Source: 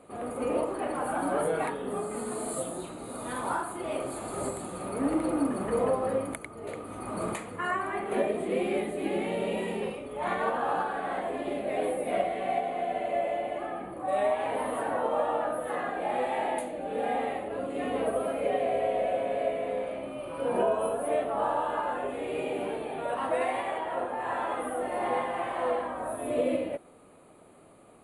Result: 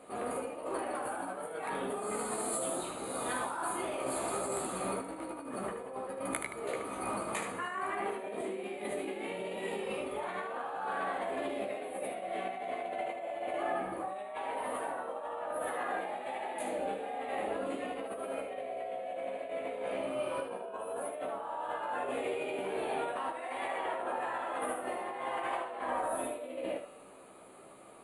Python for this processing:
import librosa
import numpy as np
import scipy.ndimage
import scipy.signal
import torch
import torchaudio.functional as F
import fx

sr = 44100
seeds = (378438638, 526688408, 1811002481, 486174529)

y = fx.over_compress(x, sr, threshold_db=-35.0, ratio=-1.0)
y = fx.low_shelf(y, sr, hz=270.0, db=-11.0)
y = fx.comb_fb(y, sr, f0_hz=190.0, decay_s=1.3, harmonics='all', damping=0.0, mix_pct=70)
y = fx.room_early_taps(y, sr, ms=(15, 76), db=(-5.5, -7.0))
y = y * 10.0 ** (8.0 / 20.0)